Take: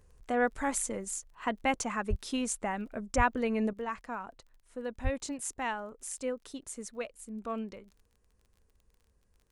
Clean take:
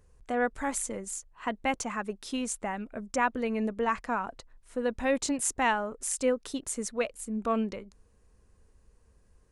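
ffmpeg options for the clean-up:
ffmpeg -i in.wav -filter_complex "[0:a]adeclick=threshold=4,asplit=3[link_01][link_02][link_03];[link_01]afade=type=out:start_time=2.09:duration=0.02[link_04];[link_02]highpass=frequency=140:width=0.5412,highpass=frequency=140:width=1.3066,afade=type=in:start_time=2.09:duration=0.02,afade=type=out:start_time=2.21:duration=0.02[link_05];[link_03]afade=type=in:start_time=2.21:duration=0.02[link_06];[link_04][link_05][link_06]amix=inputs=3:normalize=0,asplit=3[link_07][link_08][link_09];[link_07]afade=type=out:start_time=3.16:duration=0.02[link_10];[link_08]highpass=frequency=140:width=0.5412,highpass=frequency=140:width=1.3066,afade=type=in:start_time=3.16:duration=0.02,afade=type=out:start_time=3.28:duration=0.02[link_11];[link_09]afade=type=in:start_time=3.28:duration=0.02[link_12];[link_10][link_11][link_12]amix=inputs=3:normalize=0,asplit=3[link_13][link_14][link_15];[link_13]afade=type=out:start_time=5.03:duration=0.02[link_16];[link_14]highpass=frequency=140:width=0.5412,highpass=frequency=140:width=1.3066,afade=type=in:start_time=5.03:duration=0.02,afade=type=out:start_time=5.15:duration=0.02[link_17];[link_15]afade=type=in:start_time=5.15:duration=0.02[link_18];[link_16][link_17][link_18]amix=inputs=3:normalize=0,asetnsamples=nb_out_samples=441:pad=0,asendcmd='3.73 volume volume 8dB',volume=0dB" out.wav

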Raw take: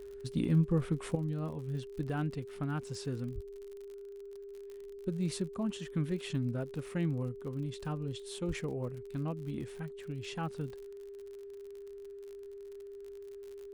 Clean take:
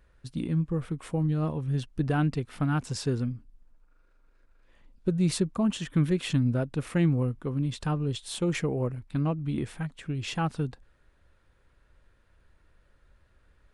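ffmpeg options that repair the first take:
ffmpeg -i in.wav -filter_complex "[0:a]adeclick=threshold=4,bandreject=frequency=400:width=30,asplit=3[link_01][link_02][link_03];[link_01]afade=type=out:start_time=3.34:duration=0.02[link_04];[link_02]highpass=frequency=140:width=0.5412,highpass=frequency=140:width=1.3066,afade=type=in:start_time=3.34:duration=0.02,afade=type=out:start_time=3.46:duration=0.02[link_05];[link_03]afade=type=in:start_time=3.46:duration=0.02[link_06];[link_04][link_05][link_06]amix=inputs=3:normalize=0,asplit=3[link_07][link_08][link_09];[link_07]afade=type=out:start_time=8.47:duration=0.02[link_10];[link_08]highpass=frequency=140:width=0.5412,highpass=frequency=140:width=1.3066,afade=type=in:start_time=8.47:duration=0.02,afade=type=out:start_time=8.59:duration=0.02[link_11];[link_09]afade=type=in:start_time=8.59:duration=0.02[link_12];[link_10][link_11][link_12]amix=inputs=3:normalize=0,asetnsamples=nb_out_samples=441:pad=0,asendcmd='1.15 volume volume 9dB',volume=0dB" out.wav

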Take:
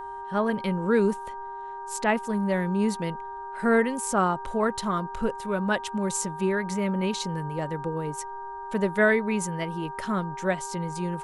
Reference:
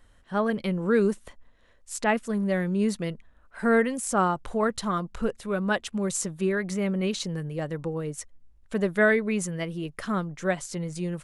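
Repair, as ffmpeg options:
ffmpeg -i in.wav -af "bandreject=frequency=396.6:width_type=h:width=4,bandreject=frequency=793.2:width_type=h:width=4,bandreject=frequency=1189.8:width_type=h:width=4,bandreject=frequency=1586.4:width_type=h:width=4,bandreject=frequency=940:width=30" out.wav

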